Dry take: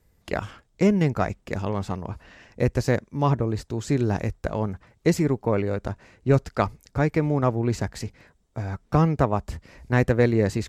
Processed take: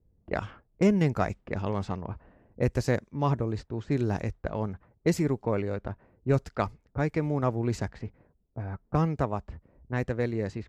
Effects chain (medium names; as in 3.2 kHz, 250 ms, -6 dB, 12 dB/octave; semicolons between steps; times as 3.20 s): gain riding within 4 dB 2 s; level-controlled noise filter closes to 420 Hz, open at -18 dBFS; trim -6 dB